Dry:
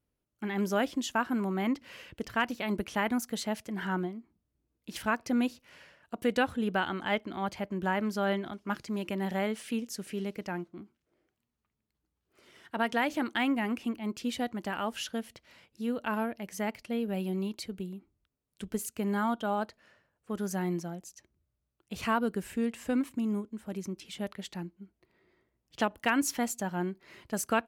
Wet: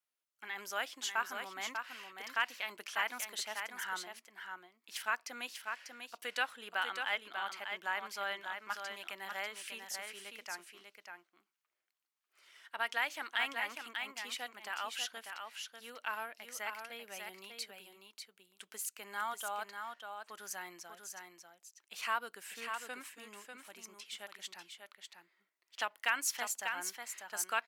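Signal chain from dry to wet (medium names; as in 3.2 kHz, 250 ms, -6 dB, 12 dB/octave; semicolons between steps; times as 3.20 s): high-pass 1.2 kHz 12 dB/octave; delay 594 ms -6 dB; trim -1 dB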